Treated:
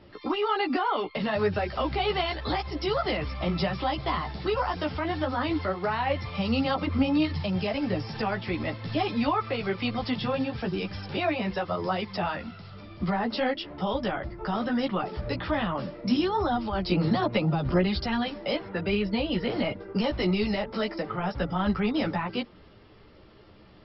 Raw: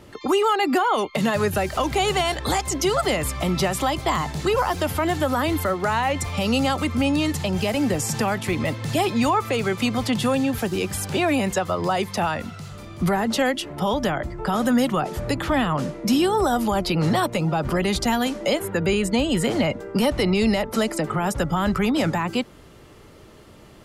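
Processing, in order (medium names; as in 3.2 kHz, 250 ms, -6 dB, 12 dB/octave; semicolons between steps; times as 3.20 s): chorus voices 6, 1.2 Hz, delay 13 ms, depth 3.8 ms; trim -3 dB; MP2 48 kbps 44.1 kHz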